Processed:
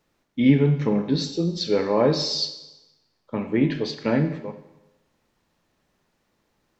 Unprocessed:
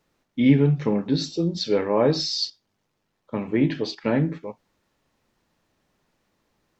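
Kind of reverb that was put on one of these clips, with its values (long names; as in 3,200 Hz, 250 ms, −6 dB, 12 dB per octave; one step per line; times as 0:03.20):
four-comb reverb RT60 1 s, combs from 31 ms, DRR 9.5 dB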